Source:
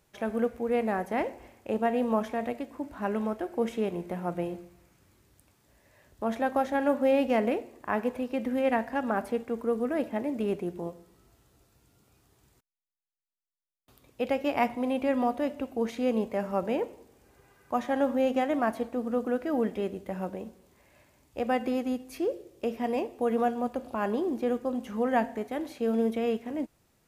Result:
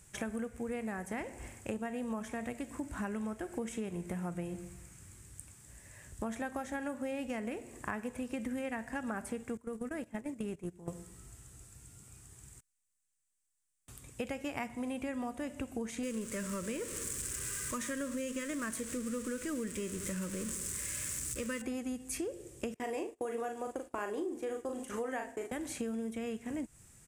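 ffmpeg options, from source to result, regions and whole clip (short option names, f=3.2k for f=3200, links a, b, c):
-filter_complex "[0:a]asettb=1/sr,asplit=3[a][b][c];[a]atrim=end=9.574[d];[b]atrim=start=9.57:end=10.88,asetpts=PTS-STARTPTS,afade=t=in:d=0.004:c=qsin,afade=t=out:st=1.306:d=0.004:c=qsin,agate=range=-19dB:threshold=-31dB:ratio=16:release=100:detection=peak,acompressor=threshold=-36dB:ratio=2.5:attack=3.2:release=140:knee=1:detection=peak[e];[c]atrim=start=10.876[f];[d][e]acrossfade=d=0.004:c1=hsin:c2=qsin[g];[g][f]acrossfade=d=0.004:c1=qsin:c2=hsin,asettb=1/sr,asplit=3[h][i][j];[h]atrim=end=16.034[k];[i]atrim=start=16.03:end=21.62,asetpts=PTS-STARTPTS,afade=t=in:d=0.004:c=qsin,afade=t=out:st=5.586:d=0.004:c=qsin,aeval=exprs='val(0)+0.5*0.0119*sgn(val(0))':c=same,asuperstop=centerf=780:order=4:qfactor=1.8,bass=f=250:g=-3,treble=f=4k:g=5[l];[j]atrim=start=21.616[m];[k][l]acrossfade=d=0.004:c1=hsin:c2=qsin[n];[n][m]acrossfade=d=0.004:c1=qsin:c2=hsin,asettb=1/sr,asplit=3[o][p][q];[o]atrim=end=22.744[r];[p]atrim=start=22.74:end=25.52,asetpts=PTS-STARTPTS,afade=t=in:d=0.004:c=qsin,afade=t=out:st=2.776:d=0.004:c=qsin,agate=range=-27dB:threshold=-42dB:ratio=16:release=100:detection=peak,lowshelf=f=260:t=q:w=3:g=-8.5,asplit=2[s][t];[t]adelay=39,volume=-5dB[u];[s][u]amix=inputs=2:normalize=0,atrim=end_sample=122598[v];[q]atrim=start=25.516[w];[r][v]acrossfade=d=0.004:c1=hsin:c2=qsin[x];[x][w]acrossfade=d=0.004:c1=qsin:c2=hsin,firequalizer=gain_entry='entry(120,0);entry(250,-8);entry(600,-13);entry(1700,-4);entry(4200,-9);entry(8000,10);entry(13000,-7)':delay=0.05:min_phase=1,acompressor=threshold=-45dB:ratio=10,volume=10.5dB"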